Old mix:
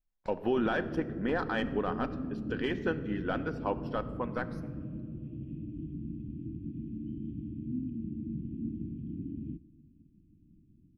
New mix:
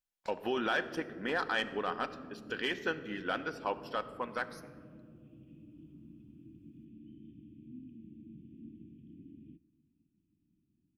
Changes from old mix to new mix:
background -6.0 dB; master: add tilt +3.5 dB/oct

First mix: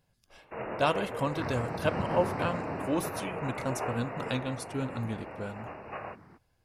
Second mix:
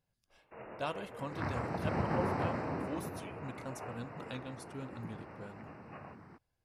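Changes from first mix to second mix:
speech -11.0 dB; first sound -11.5 dB

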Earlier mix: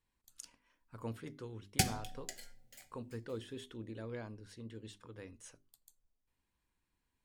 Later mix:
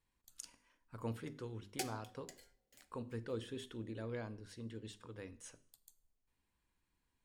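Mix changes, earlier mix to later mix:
background: add ladder high-pass 330 Hz, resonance 55%; reverb: on, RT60 0.55 s

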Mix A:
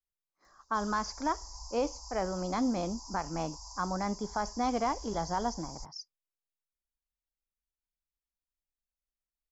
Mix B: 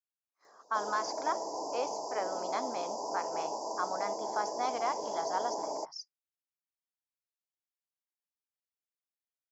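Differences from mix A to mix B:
background: remove inverse Chebyshev band-stop 160–450 Hz, stop band 70 dB; master: add HPF 610 Hz 12 dB/oct

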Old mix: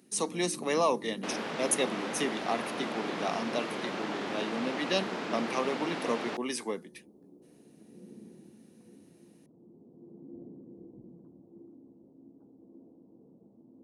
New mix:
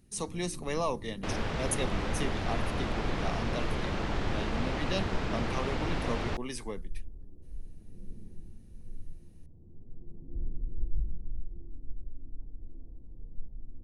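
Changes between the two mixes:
speech -5.0 dB; first sound -7.0 dB; master: remove HPF 210 Hz 24 dB/oct

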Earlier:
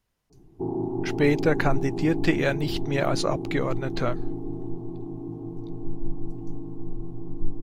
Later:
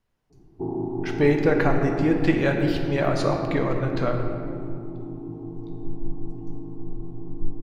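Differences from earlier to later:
speech: add high shelf 3400 Hz -9 dB; reverb: on, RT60 2.3 s

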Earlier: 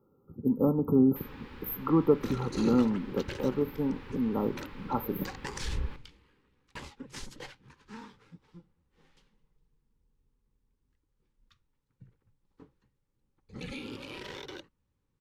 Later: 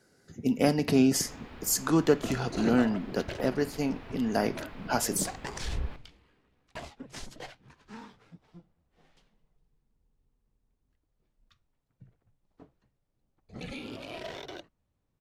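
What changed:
speech: remove brick-wall FIR band-stop 1400–12000 Hz; master: remove Butterworth band-stop 670 Hz, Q 3

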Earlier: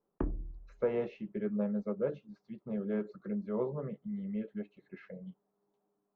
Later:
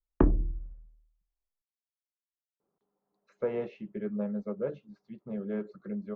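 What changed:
speech: entry +2.60 s; background +11.5 dB

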